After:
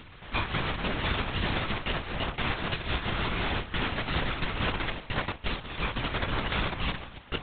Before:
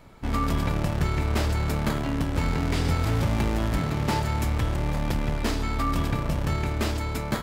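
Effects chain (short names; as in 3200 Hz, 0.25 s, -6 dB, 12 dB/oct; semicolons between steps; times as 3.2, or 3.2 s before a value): dark delay 64 ms, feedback 65%, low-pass 1300 Hz, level -3.5 dB; gate -21 dBFS, range -45 dB; tilt +4 dB/oct; de-hum 70.77 Hz, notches 11; in parallel at +2.5 dB: upward compressor, threshold -28 dBFS; on the sum: limiter -11.5 dBFS, peak gain reduction 8.5 dB; reverse; compressor, threshold -33 dBFS, peak gain reduction 12 dB; reverse; full-wave rectifier; reverb RT60 5.8 s, pre-delay 98 ms, DRR 18 dB; LPC vocoder at 8 kHz whisper; gain +8 dB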